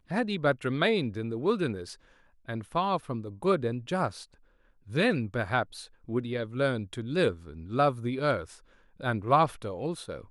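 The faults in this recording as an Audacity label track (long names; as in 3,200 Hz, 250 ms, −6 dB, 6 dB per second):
1.890000	1.890000	drop-out 2 ms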